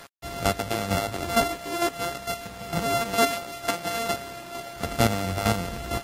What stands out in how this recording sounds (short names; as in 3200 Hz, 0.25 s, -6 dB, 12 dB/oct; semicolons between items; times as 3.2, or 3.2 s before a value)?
a buzz of ramps at a fixed pitch in blocks of 64 samples; chopped level 2.2 Hz, depth 60%, duty 15%; a quantiser's noise floor 8-bit, dither none; Vorbis